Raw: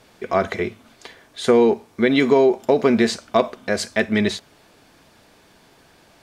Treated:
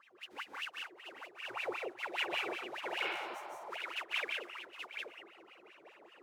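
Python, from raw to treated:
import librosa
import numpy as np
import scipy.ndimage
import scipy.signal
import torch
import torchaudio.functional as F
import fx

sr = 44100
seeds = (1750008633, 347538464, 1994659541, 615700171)

y = x + 0.5 * 10.0 ** (-10.5 / 20.0) * np.diff(np.sign(x), prepend=np.sign(x[:1]))
y = fx.spec_gate(y, sr, threshold_db=-20, keep='weak')
y = fx.wah_lfo(y, sr, hz=5.1, low_hz=340.0, high_hz=2900.0, q=22.0)
y = fx.echo_multitap(y, sr, ms=(149, 182, 442, 767, 829), db=(-5.0, -3.5, -13.0, -14.5, -5.5))
y = fx.spec_repair(y, sr, seeds[0], start_s=3.07, length_s=0.57, low_hz=580.0, high_hz=5500.0, source='both')
y = y * librosa.db_to_amplitude(6.5)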